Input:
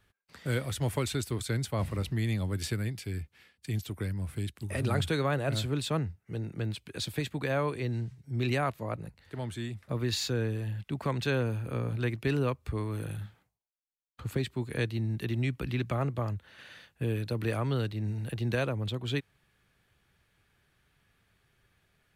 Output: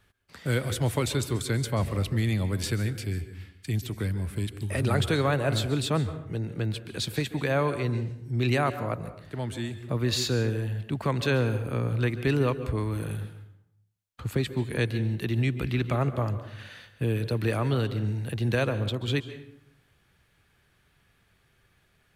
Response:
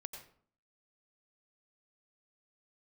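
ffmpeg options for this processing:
-filter_complex "[0:a]asplit=2[a][b];[1:a]atrim=start_sample=2205,asetrate=28665,aresample=44100[c];[b][c]afir=irnorm=-1:irlink=0,volume=-2dB[d];[a][d]amix=inputs=2:normalize=0"

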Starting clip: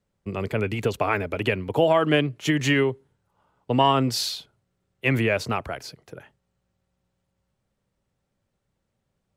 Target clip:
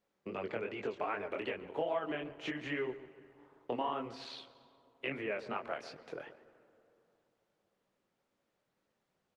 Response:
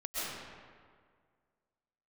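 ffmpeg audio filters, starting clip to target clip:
-filter_complex "[0:a]acrossover=split=2700[a][b];[b]acompressor=threshold=-42dB:ratio=4:attack=1:release=60[c];[a][c]amix=inputs=2:normalize=0,asplit=3[d][e][f];[d]afade=t=out:st=1.66:d=0.02[g];[e]agate=range=-11dB:threshold=-22dB:ratio=16:detection=peak,afade=t=in:st=1.66:d=0.02,afade=t=out:st=2.06:d=0.02[h];[f]afade=t=in:st=2.06:d=0.02[i];[g][h][i]amix=inputs=3:normalize=0,acompressor=threshold=-34dB:ratio=5,flanger=delay=19.5:depth=6.7:speed=2.5,asettb=1/sr,asplit=3[j][k][l];[j]atrim=end=4.244[m];[k]atrim=start=4.24:end=5.11,asetpts=PTS-STARTPTS,afade=t=in:d=0.004:c=qsin,afade=t=out:st=0.866:d=0.004:c=qsin,tremolo=f=76:d=0.519[n];[l]atrim=start=5.106[o];[m][n]acrossfade=d=0.004:c1=hsin:c2=qsin[p];[p][o]acrossfade=d=0.004:c1=qsin:c2=hsin,highpass=300,lowpass=4.6k,asplit=2[q][r];[r]adelay=142,lowpass=f=1.3k:p=1,volume=-12.5dB,asplit=2[s][t];[t]adelay=142,lowpass=f=1.3k:p=1,volume=0.29,asplit=2[u][v];[v]adelay=142,lowpass=f=1.3k:p=1,volume=0.29[w];[q][s][u][w]amix=inputs=4:normalize=0,asplit=2[x][y];[1:a]atrim=start_sample=2205,asetrate=24696,aresample=44100[z];[y][z]afir=irnorm=-1:irlink=0,volume=-28dB[aa];[x][aa]amix=inputs=2:normalize=0,volume=3.5dB" -ar 48000 -c:a libopus -b:a 24k

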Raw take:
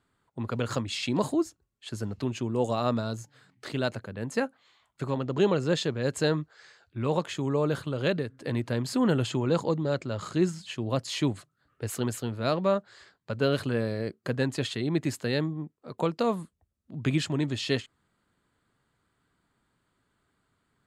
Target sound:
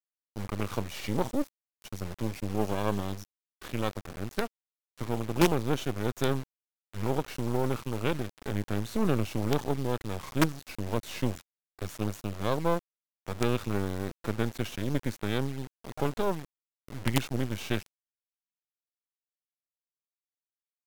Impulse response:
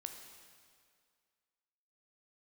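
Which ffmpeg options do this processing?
-af "aemphasis=mode=reproduction:type=cd,acrusher=bits=4:dc=4:mix=0:aa=0.000001,asetrate=38170,aresample=44100,atempo=1.15535"

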